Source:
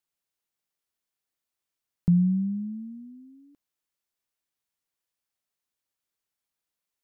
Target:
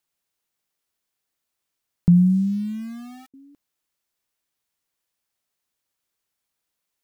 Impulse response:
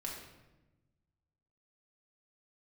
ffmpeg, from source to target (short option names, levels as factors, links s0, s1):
-filter_complex "[0:a]asettb=1/sr,asplit=3[s0][s1][s2];[s0]atrim=end=2.104[s3];[s1]atrim=start=2.1:end=3.34,asetpts=PTS-STARTPTS,afade=t=in:d=0.004:c=qsin,afade=t=out:st=1.236:d=0.004:c=qsin,aeval=exprs='val(0)*gte(abs(val(0)),0.00501)':c=same[s4];[s2]atrim=start=3.336[s5];[s3][s4]acrossfade=d=0.004:c1=hsin:c2=qsin[s6];[s6][s5]acrossfade=d=0.004:c1=qsin:c2=hsin,volume=2"